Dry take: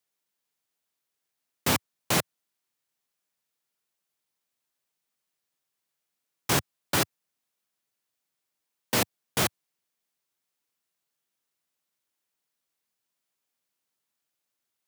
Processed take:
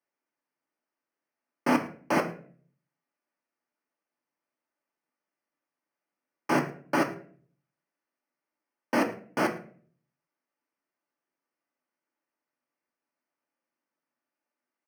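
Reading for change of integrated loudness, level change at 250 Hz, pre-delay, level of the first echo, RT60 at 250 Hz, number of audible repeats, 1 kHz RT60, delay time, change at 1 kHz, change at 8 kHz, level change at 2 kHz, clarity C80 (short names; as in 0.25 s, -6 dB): -1.5 dB, +5.0 dB, 3 ms, -20.5 dB, 0.70 s, 1, 0.40 s, 0.109 s, +2.5 dB, -15.0 dB, 0.0 dB, 15.5 dB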